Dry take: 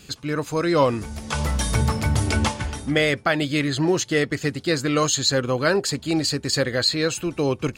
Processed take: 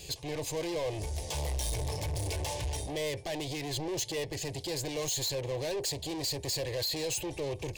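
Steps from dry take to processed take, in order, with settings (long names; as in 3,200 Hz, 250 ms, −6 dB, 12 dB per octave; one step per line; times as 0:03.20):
brickwall limiter −17 dBFS, peak gain reduction 9.5 dB
soft clipping −33 dBFS, distortion −6 dB
phaser with its sweep stopped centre 560 Hz, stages 4
level +4 dB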